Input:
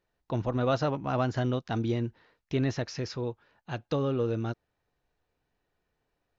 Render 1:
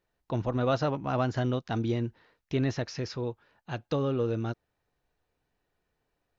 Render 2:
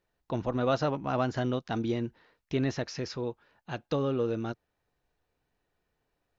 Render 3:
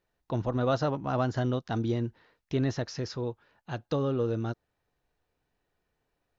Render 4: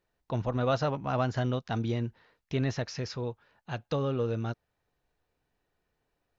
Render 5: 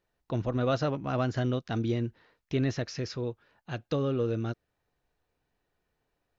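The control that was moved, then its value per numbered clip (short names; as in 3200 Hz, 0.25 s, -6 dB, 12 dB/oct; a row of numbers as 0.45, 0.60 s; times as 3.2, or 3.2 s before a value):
dynamic EQ, frequency: 8500, 110, 2400, 320, 890 Hz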